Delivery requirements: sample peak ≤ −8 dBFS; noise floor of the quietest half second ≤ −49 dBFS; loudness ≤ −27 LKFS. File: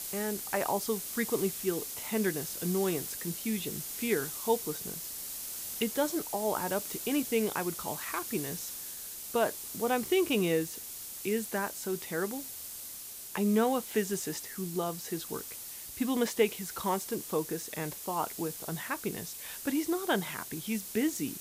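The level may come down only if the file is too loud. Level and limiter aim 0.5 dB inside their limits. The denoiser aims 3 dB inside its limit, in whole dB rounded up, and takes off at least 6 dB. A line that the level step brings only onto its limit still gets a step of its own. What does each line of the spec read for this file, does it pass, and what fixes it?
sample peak −13.5 dBFS: in spec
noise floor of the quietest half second −44 dBFS: out of spec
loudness −32.5 LKFS: in spec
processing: broadband denoise 8 dB, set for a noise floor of −44 dBFS

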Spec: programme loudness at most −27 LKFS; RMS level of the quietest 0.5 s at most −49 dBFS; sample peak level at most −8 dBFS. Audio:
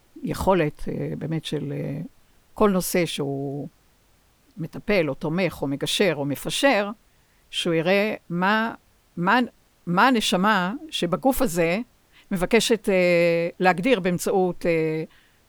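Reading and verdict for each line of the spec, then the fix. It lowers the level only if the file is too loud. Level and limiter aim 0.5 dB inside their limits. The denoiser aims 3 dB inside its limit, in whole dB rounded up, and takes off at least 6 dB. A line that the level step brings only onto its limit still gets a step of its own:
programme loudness −23.0 LKFS: out of spec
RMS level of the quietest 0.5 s −60 dBFS: in spec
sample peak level −4.5 dBFS: out of spec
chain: level −4.5 dB

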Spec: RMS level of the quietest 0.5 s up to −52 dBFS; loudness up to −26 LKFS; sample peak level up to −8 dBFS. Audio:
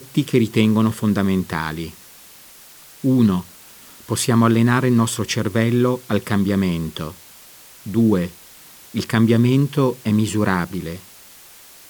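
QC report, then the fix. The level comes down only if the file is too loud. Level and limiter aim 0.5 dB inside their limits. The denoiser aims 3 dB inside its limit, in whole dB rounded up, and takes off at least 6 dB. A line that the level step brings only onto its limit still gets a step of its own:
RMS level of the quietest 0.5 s −44 dBFS: out of spec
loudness −19.0 LKFS: out of spec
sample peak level −2.0 dBFS: out of spec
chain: broadband denoise 6 dB, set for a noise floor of −44 dBFS
level −7.5 dB

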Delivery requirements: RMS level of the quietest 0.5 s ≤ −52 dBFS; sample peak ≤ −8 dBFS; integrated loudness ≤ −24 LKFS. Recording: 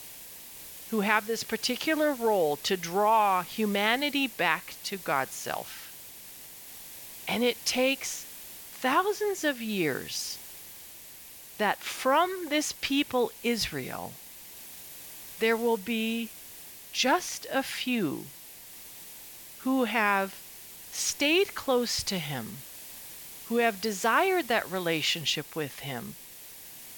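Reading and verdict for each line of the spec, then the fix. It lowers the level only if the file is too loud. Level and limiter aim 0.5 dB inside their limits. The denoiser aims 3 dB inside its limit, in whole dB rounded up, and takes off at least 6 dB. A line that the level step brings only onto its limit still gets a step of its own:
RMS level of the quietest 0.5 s −47 dBFS: out of spec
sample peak −9.5 dBFS: in spec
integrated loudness −28.0 LKFS: in spec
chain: broadband denoise 8 dB, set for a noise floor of −47 dBFS

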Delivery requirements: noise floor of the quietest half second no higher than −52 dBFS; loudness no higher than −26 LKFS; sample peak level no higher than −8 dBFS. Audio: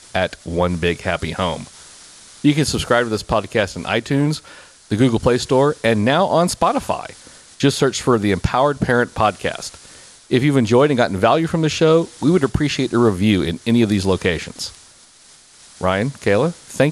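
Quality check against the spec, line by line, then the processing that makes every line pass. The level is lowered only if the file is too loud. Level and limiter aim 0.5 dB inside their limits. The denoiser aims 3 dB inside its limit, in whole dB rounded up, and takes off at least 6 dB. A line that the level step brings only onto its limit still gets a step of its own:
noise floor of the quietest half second −48 dBFS: out of spec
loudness −18.0 LKFS: out of spec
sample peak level −3.5 dBFS: out of spec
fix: level −8.5 dB

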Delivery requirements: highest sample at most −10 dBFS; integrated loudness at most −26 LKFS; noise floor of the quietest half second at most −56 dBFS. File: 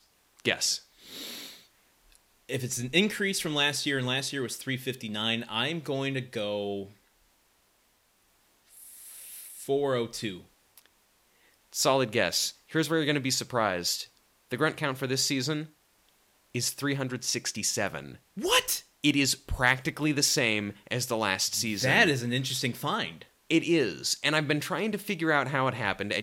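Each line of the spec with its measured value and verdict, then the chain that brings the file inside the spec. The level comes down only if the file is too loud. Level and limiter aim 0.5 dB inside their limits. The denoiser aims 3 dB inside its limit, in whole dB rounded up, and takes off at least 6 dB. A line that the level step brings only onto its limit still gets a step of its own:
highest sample −6.0 dBFS: out of spec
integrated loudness −28.0 LKFS: in spec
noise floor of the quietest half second −68 dBFS: in spec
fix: brickwall limiter −10.5 dBFS

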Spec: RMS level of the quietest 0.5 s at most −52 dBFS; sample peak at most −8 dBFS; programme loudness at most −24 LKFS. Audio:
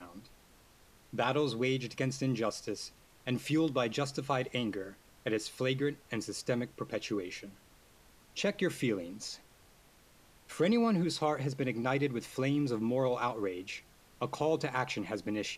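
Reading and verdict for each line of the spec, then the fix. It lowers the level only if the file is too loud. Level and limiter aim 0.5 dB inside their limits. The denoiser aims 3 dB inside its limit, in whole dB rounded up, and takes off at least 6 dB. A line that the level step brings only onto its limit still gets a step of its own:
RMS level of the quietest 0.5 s −62 dBFS: in spec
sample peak −17.5 dBFS: in spec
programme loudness −34.0 LKFS: in spec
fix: no processing needed

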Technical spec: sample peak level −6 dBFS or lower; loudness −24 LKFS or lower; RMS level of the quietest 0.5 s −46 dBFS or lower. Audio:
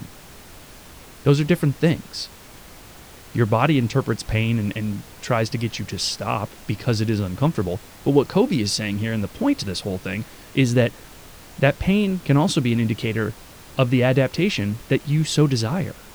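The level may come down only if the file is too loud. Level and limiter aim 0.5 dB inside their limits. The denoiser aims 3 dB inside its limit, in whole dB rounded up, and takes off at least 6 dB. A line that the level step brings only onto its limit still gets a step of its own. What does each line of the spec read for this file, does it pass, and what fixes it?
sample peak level −3.0 dBFS: out of spec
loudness −22.0 LKFS: out of spec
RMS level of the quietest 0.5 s −43 dBFS: out of spec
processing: broadband denoise 6 dB, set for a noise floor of −43 dBFS
level −2.5 dB
brickwall limiter −6.5 dBFS

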